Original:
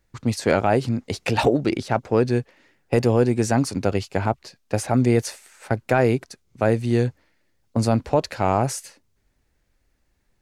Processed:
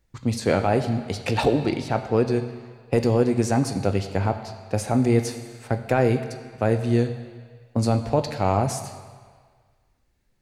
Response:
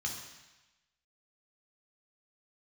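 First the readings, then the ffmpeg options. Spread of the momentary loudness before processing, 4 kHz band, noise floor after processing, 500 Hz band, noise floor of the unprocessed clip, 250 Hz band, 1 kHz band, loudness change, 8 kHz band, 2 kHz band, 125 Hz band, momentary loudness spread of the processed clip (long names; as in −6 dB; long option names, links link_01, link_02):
8 LU, −1.5 dB, −66 dBFS, −1.5 dB, −68 dBFS, −1.0 dB, −2.0 dB, −1.5 dB, −2.5 dB, −3.5 dB, −0.5 dB, 12 LU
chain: -filter_complex "[0:a]asplit=2[link_01][link_02];[1:a]atrim=start_sample=2205,asetrate=28665,aresample=44100[link_03];[link_02][link_03]afir=irnorm=-1:irlink=0,volume=-13dB[link_04];[link_01][link_04]amix=inputs=2:normalize=0,volume=-1dB"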